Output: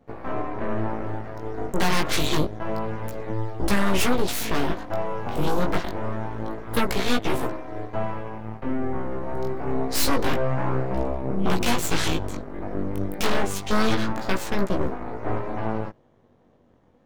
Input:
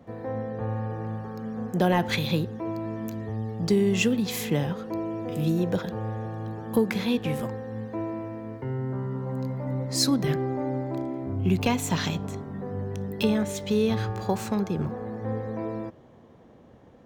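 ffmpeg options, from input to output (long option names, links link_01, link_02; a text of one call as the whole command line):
ffmpeg -i in.wav -af "aeval=exprs='0.251*(cos(1*acos(clip(val(0)/0.251,-1,1)))-cos(1*PI/2))+0.0355*(cos(3*acos(clip(val(0)/0.251,-1,1)))-cos(3*PI/2))+0.126*(cos(8*acos(clip(val(0)/0.251,-1,1)))-cos(8*PI/2))':channel_layout=same,flanger=delay=15.5:depth=5.5:speed=0.27" out.wav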